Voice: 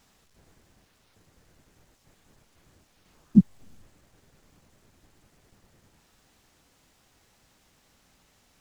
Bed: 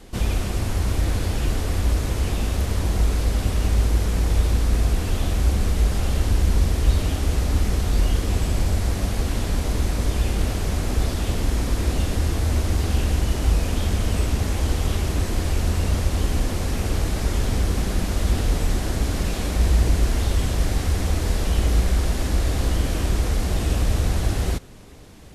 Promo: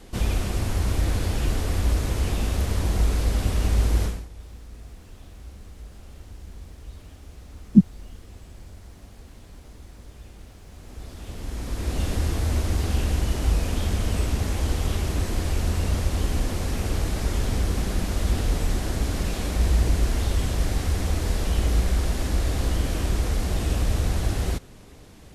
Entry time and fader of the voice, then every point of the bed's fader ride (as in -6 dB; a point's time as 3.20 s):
4.40 s, +2.5 dB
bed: 4.05 s -1.5 dB
4.29 s -22.5 dB
10.65 s -22.5 dB
12.07 s -2.5 dB